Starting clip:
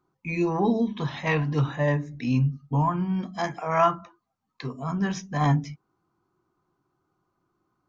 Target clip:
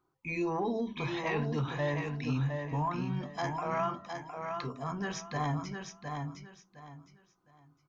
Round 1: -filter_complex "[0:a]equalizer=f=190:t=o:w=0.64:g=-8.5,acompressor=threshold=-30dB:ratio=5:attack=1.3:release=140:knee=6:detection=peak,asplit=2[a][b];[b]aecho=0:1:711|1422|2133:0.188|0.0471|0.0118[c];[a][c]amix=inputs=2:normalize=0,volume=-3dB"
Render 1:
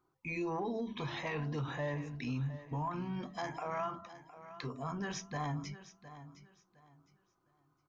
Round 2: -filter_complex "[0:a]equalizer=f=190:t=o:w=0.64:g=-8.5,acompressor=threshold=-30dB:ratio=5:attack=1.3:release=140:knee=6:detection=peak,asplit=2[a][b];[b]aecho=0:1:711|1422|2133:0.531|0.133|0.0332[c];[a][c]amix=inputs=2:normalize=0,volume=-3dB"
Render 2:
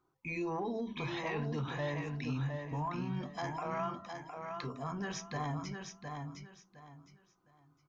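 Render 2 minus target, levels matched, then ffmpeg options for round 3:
compressor: peak gain reduction +5 dB
-filter_complex "[0:a]equalizer=f=190:t=o:w=0.64:g=-8.5,acompressor=threshold=-23.5dB:ratio=5:attack=1.3:release=140:knee=6:detection=peak,asplit=2[a][b];[b]aecho=0:1:711|1422|2133:0.531|0.133|0.0332[c];[a][c]amix=inputs=2:normalize=0,volume=-3dB"

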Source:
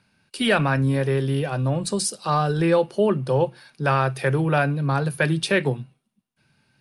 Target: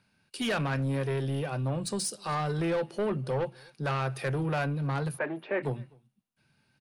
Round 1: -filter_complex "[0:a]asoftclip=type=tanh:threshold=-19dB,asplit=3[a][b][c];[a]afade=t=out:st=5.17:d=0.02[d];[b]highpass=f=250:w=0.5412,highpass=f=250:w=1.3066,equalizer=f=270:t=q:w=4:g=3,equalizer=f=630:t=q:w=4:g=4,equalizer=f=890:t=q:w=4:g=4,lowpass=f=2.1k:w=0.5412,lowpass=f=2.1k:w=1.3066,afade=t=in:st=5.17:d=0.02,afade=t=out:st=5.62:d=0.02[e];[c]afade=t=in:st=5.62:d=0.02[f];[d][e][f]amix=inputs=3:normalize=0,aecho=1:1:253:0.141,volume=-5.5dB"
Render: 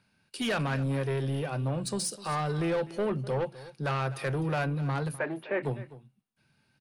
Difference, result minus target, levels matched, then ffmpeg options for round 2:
echo-to-direct +10.5 dB
-filter_complex "[0:a]asoftclip=type=tanh:threshold=-19dB,asplit=3[a][b][c];[a]afade=t=out:st=5.17:d=0.02[d];[b]highpass=f=250:w=0.5412,highpass=f=250:w=1.3066,equalizer=f=270:t=q:w=4:g=3,equalizer=f=630:t=q:w=4:g=4,equalizer=f=890:t=q:w=4:g=4,lowpass=f=2.1k:w=0.5412,lowpass=f=2.1k:w=1.3066,afade=t=in:st=5.17:d=0.02,afade=t=out:st=5.62:d=0.02[e];[c]afade=t=in:st=5.62:d=0.02[f];[d][e][f]amix=inputs=3:normalize=0,aecho=1:1:253:0.0422,volume=-5.5dB"

